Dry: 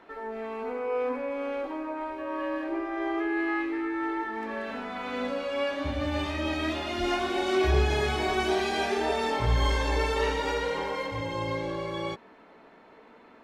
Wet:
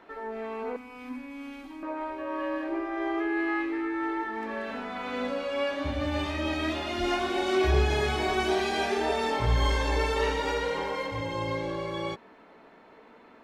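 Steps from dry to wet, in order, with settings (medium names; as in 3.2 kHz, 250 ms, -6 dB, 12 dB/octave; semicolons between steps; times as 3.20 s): 0.76–1.83 s: FFT filter 270 Hz 0 dB, 470 Hz -26 dB, 800 Hz -12 dB, 1.5 kHz -11 dB, 2.2 kHz -4 dB, 9.7 kHz +6 dB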